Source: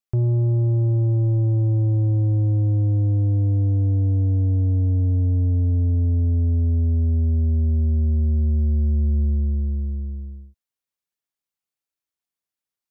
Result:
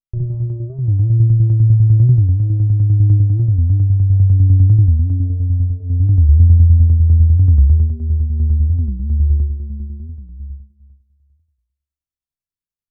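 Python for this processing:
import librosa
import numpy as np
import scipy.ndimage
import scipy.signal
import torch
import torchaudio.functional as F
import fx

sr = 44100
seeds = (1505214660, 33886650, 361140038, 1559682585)

y = fx.low_shelf(x, sr, hz=86.0, db=9.5)
y = fx.echo_feedback(y, sr, ms=211, feedback_pct=31, wet_db=-14.0)
y = fx.room_shoebox(y, sr, seeds[0], volume_m3=2400.0, walls='furnished', distance_m=3.0)
y = fx.tremolo_shape(y, sr, shape='saw_down', hz=10.0, depth_pct=55)
y = fx.bass_treble(y, sr, bass_db=9, treble_db=fx.steps((0.0, -7.0), (9.62, 3.0)))
y = fx.record_warp(y, sr, rpm=45.0, depth_cents=250.0)
y = y * 10.0 ** (-10.5 / 20.0)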